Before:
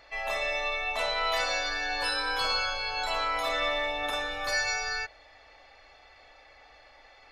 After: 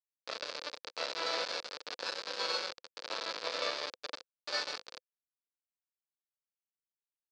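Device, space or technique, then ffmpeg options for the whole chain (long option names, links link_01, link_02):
hand-held game console: -af "acrusher=bits=3:mix=0:aa=0.000001,highpass=410,equalizer=frequency=510:width_type=q:width=4:gain=9,equalizer=frequency=760:width_type=q:width=4:gain=-5,equalizer=frequency=2000:width_type=q:width=4:gain=-6,equalizer=frequency=3000:width_type=q:width=4:gain=-5,equalizer=frequency=4600:width_type=q:width=4:gain=6,lowpass=frequency=4800:width=0.5412,lowpass=frequency=4800:width=1.3066,volume=-4.5dB"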